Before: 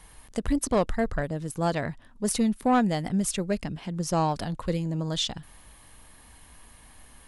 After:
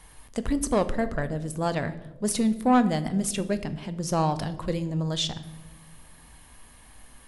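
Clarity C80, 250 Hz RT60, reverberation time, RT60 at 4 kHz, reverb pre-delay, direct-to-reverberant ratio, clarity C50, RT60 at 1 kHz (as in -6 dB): 17.0 dB, 1.8 s, 1.2 s, 0.70 s, 8 ms, 11.0 dB, 15.0 dB, 0.95 s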